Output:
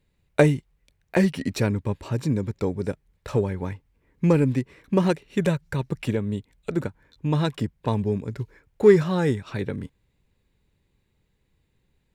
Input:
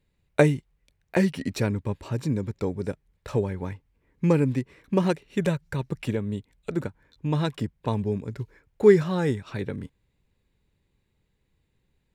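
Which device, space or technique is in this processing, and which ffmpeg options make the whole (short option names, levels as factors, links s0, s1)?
parallel distortion: -filter_complex "[0:a]asplit=2[s0][s1];[s1]asoftclip=type=hard:threshold=0.126,volume=0.316[s2];[s0][s2]amix=inputs=2:normalize=0"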